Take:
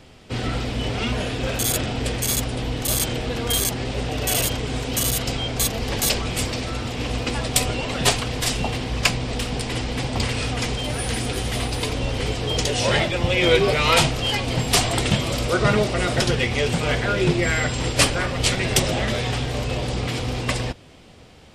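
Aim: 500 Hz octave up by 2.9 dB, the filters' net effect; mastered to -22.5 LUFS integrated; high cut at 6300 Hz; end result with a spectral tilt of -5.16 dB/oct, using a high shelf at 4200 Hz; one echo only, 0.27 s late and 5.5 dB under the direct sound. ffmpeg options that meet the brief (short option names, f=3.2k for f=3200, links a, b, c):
-af "lowpass=6.3k,equalizer=f=500:t=o:g=3.5,highshelf=f=4.2k:g=-6.5,aecho=1:1:270:0.531,volume=-1dB"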